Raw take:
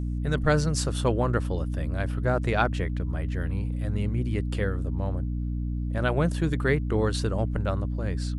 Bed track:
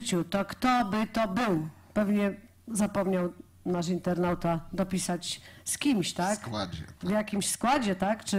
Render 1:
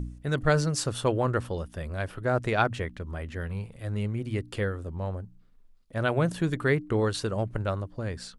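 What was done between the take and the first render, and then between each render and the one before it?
de-hum 60 Hz, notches 5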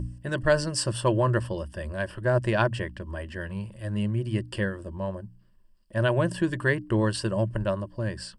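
ripple EQ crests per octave 1.3, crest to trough 12 dB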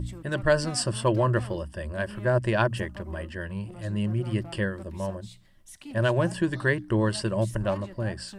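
add bed track -16.5 dB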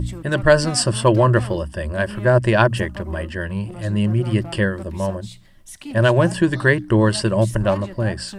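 gain +8.5 dB

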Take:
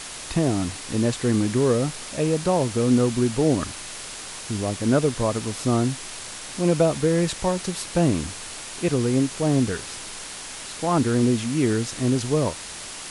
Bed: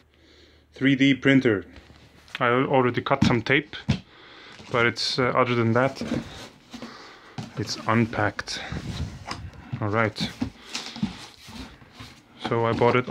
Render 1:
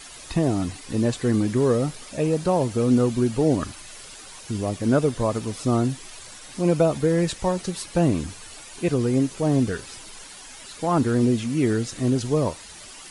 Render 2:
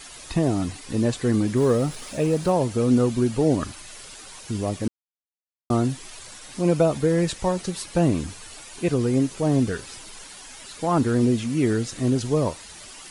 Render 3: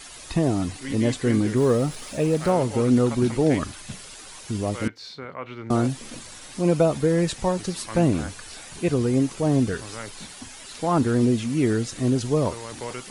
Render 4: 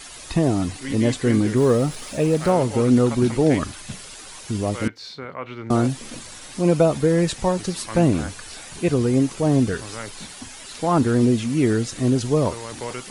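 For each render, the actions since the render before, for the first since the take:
denoiser 11 dB, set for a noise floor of -37 dBFS
1.57–2.52 G.711 law mismatch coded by mu; 4.88–5.7 mute
add bed -14.5 dB
gain +2.5 dB

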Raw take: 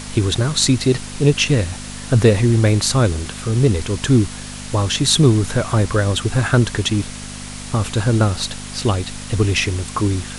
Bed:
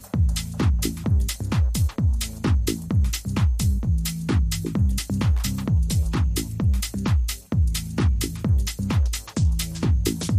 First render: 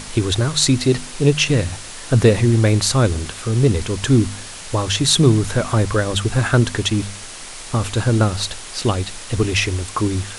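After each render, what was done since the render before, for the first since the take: de-hum 50 Hz, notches 5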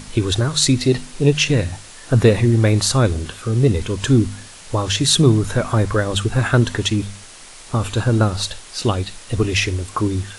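noise print and reduce 6 dB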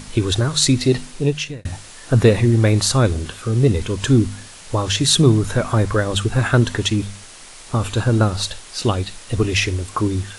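1.06–1.65 fade out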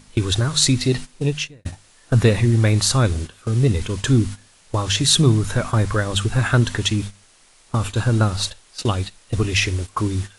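gate -25 dBFS, range -13 dB; dynamic EQ 430 Hz, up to -5 dB, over -27 dBFS, Q 0.73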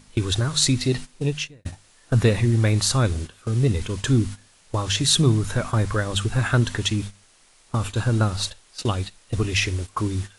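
gain -3 dB

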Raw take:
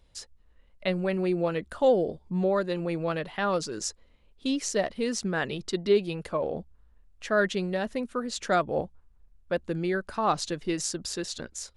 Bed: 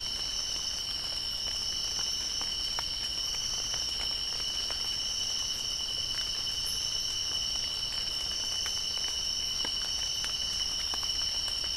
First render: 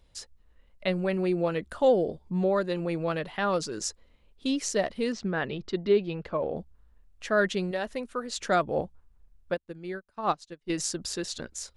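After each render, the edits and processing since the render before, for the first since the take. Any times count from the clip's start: 5.12–6.56 air absorption 180 m; 7.71–8.4 bell 160 Hz -9 dB 1.6 oct; 9.54–10.7 upward expander 2.5:1, over -41 dBFS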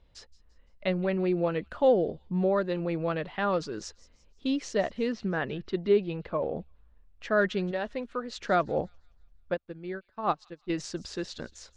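air absorption 150 m; thin delay 0.171 s, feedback 42%, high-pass 3200 Hz, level -18.5 dB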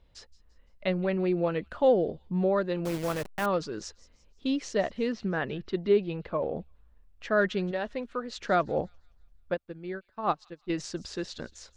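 2.85–3.46 level-crossing sampler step -32.5 dBFS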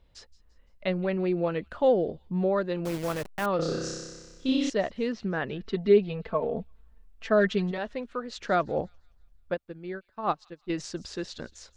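3.56–4.7 flutter echo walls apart 5.3 m, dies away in 1.4 s; 5.6–7.78 comb 4.5 ms, depth 79%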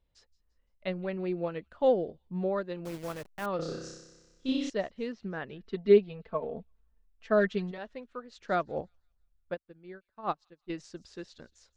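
upward expander 1.5:1, over -41 dBFS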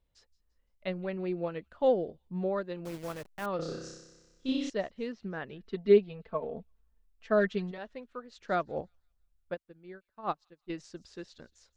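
gain -1 dB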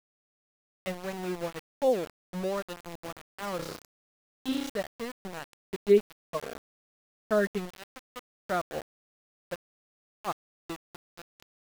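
sample gate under -34.5 dBFS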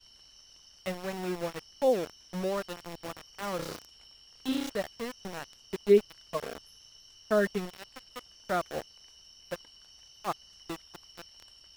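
add bed -23 dB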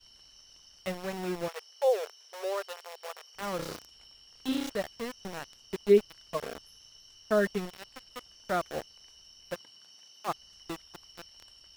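1.48–3.35 brick-wall FIR high-pass 380 Hz; 9.54–10.27 HPF 80 Hz -> 220 Hz 24 dB/oct

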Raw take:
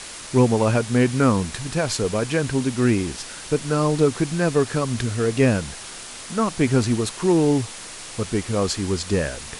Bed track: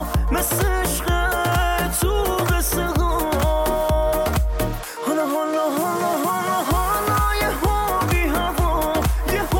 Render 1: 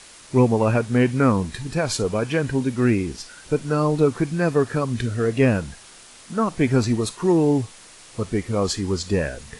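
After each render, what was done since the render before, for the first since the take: noise print and reduce 9 dB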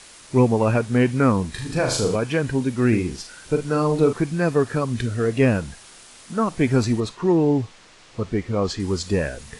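1.51–2.16 flutter echo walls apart 6.6 m, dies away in 0.53 s; 2.88–4.13 doubler 44 ms -8 dB; 7–8.8 air absorption 100 m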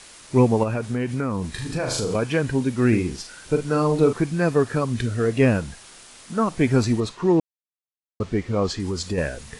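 0.63–2.15 compressor 4:1, threshold -21 dBFS; 7.4–8.2 mute; 8.7–9.18 compressor 4:1, threshold -22 dBFS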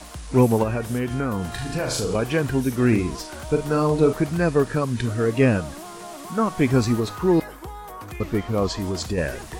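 add bed track -17 dB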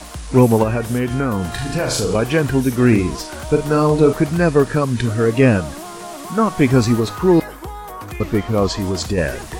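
gain +5.5 dB; limiter -2 dBFS, peak gain reduction 1.5 dB

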